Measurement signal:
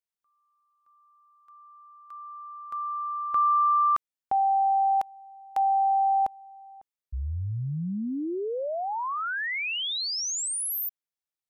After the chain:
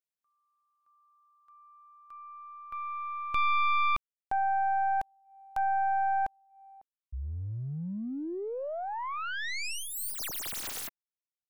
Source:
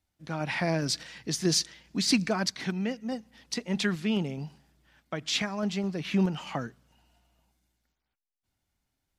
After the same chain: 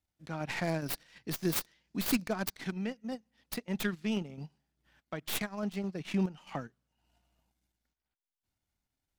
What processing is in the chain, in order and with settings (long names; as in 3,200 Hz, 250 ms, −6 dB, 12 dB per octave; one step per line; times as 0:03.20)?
stylus tracing distortion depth 0.34 ms
transient designer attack 0 dB, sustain −12 dB
level −5 dB